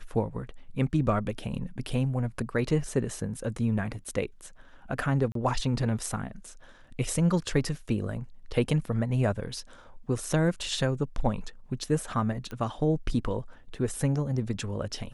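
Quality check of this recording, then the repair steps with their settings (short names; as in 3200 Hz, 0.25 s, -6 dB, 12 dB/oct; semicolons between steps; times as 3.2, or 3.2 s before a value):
5.32–5.35 gap 33 ms
12.51 pop -25 dBFS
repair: de-click; interpolate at 5.32, 33 ms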